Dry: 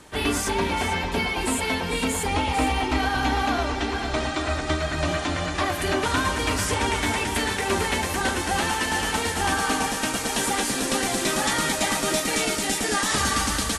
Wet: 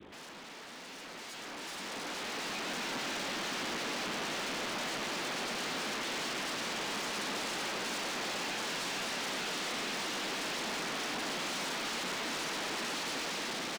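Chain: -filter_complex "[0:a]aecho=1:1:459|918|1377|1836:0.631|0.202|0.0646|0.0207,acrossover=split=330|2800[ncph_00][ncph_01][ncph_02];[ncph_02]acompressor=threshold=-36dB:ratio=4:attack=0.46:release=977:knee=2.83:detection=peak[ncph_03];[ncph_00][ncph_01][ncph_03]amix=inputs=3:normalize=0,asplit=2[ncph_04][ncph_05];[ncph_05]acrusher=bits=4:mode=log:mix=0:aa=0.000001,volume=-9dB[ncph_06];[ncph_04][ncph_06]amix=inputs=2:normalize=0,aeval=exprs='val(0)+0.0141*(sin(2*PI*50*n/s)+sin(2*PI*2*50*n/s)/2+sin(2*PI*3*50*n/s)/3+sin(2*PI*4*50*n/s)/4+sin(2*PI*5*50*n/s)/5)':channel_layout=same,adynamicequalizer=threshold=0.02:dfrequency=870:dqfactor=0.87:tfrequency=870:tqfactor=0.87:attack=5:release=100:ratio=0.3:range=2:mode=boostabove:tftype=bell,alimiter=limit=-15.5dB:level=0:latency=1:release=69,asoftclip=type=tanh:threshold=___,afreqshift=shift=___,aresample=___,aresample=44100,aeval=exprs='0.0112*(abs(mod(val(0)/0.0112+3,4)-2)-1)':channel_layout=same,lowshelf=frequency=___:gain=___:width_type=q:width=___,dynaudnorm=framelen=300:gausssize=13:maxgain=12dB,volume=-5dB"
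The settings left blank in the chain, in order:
-33.5dB, 41, 8000, 140, -13.5, 1.5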